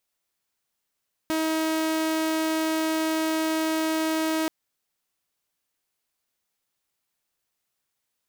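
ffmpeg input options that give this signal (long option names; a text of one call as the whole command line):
ffmpeg -f lavfi -i "aevalsrc='0.0944*(2*mod(318*t,1)-1)':duration=3.18:sample_rate=44100" out.wav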